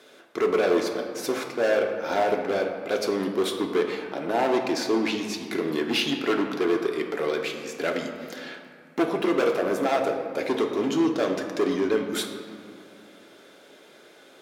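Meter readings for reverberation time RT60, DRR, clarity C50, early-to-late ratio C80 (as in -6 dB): 2.2 s, 2.0 dB, 5.5 dB, 7.0 dB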